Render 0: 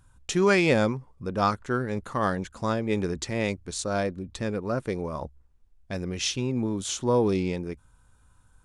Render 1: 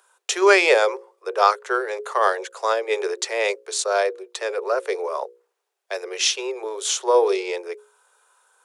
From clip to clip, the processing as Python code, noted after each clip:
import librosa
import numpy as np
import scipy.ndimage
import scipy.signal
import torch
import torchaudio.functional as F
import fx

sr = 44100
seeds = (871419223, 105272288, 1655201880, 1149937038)

y = scipy.signal.sosfilt(scipy.signal.butter(16, 380.0, 'highpass', fs=sr, output='sos'), x)
y = fx.hum_notches(y, sr, base_hz=60, count=9)
y = y * librosa.db_to_amplitude(8.0)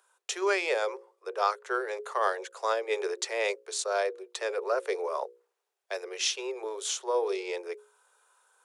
y = fx.rider(x, sr, range_db=4, speed_s=0.5)
y = y * librosa.db_to_amplitude(-9.0)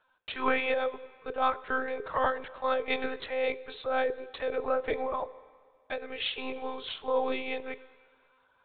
y = fx.lpc_monotone(x, sr, seeds[0], pitch_hz=260.0, order=16)
y = fx.rev_plate(y, sr, seeds[1], rt60_s=1.9, hf_ratio=0.95, predelay_ms=0, drr_db=17.0)